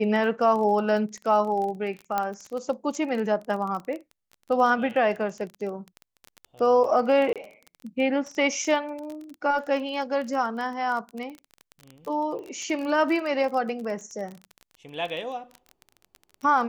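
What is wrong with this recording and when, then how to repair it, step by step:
crackle 23 per s -31 dBFS
2.18 s: pop -12 dBFS
7.33–7.36 s: dropout 27 ms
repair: de-click; interpolate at 7.33 s, 27 ms

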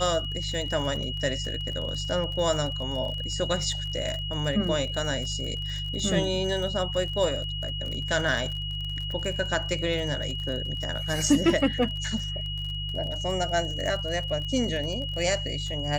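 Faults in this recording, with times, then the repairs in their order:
crackle 40 per s -33 dBFS
hum 50 Hz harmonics 3 -34 dBFS
whine 2.9 kHz -33 dBFS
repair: de-click; de-hum 50 Hz, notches 3; band-stop 2.9 kHz, Q 30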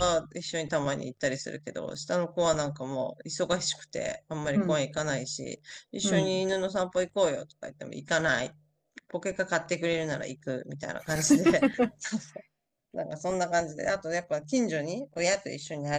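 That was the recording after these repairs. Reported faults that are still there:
nothing left

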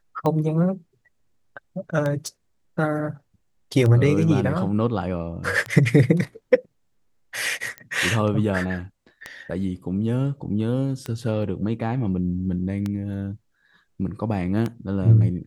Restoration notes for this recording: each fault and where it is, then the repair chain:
tick 33 1/3 rpm -14 dBFS
2.27 s: pop
7.78 s: pop -19 dBFS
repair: de-click

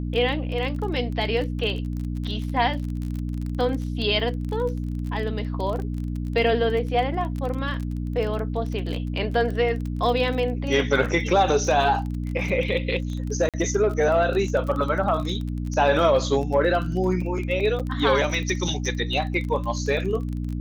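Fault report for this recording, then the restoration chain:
crackle 25 per s -29 dBFS
hum 60 Hz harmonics 5 -28 dBFS
13.49–13.54 s: dropout 47 ms
17.79–17.80 s: dropout 6.9 ms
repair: de-click; de-hum 60 Hz, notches 5; interpolate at 13.49 s, 47 ms; interpolate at 17.79 s, 6.9 ms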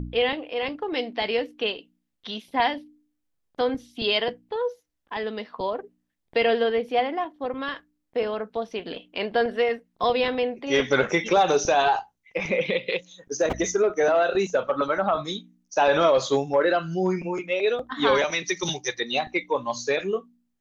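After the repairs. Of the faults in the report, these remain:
nothing left

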